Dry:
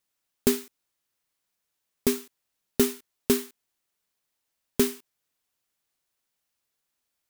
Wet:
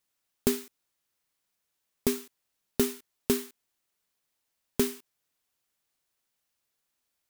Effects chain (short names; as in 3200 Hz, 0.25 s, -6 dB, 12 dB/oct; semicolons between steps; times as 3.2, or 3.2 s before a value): compressor 1.5:1, threshold -27 dBFS, peak gain reduction 4.5 dB